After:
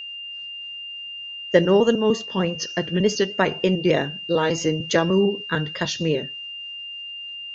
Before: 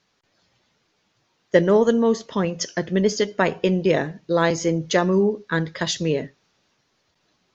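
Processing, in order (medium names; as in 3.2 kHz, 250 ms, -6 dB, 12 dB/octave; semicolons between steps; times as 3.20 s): pitch shift switched off and on -1 st, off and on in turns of 150 ms; whistle 2.8 kHz -32 dBFS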